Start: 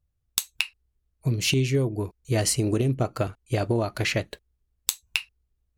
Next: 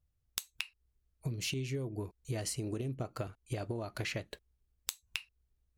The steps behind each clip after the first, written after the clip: compression 5:1, threshold -32 dBFS, peak gain reduction 13 dB; trim -3 dB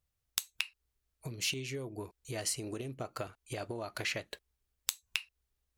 bass shelf 350 Hz -11.5 dB; trim +4 dB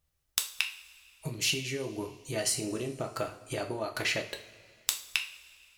two-slope reverb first 0.39 s, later 2.4 s, from -18 dB, DRR 3 dB; trim +4 dB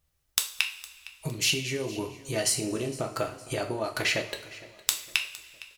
feedback delay 460 ms, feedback 43%, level -19.5 dB; trim +3.5 dB

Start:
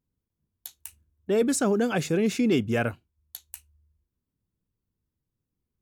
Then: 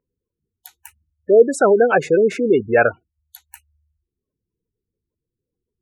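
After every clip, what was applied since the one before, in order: spectral gate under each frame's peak -20 dB strong; high-order bell 920 Hz +15 dB 2.9 oct; trim -1 dB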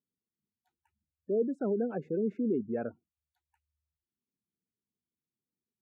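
band-pass filter 220 Hz, Q 2.5; trim -6.5 dB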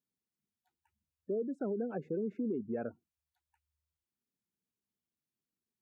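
compression, threshold -30 dBFS, peak gain reduction 6.5 dB; trim -1.5 dB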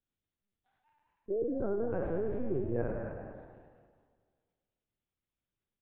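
spectral sustain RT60 1.77 s; LPC vocoder at 8 kHz pitch kept; frequency-shifting echo 211 ms, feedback 30%, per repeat +100 Hz, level -11 dB

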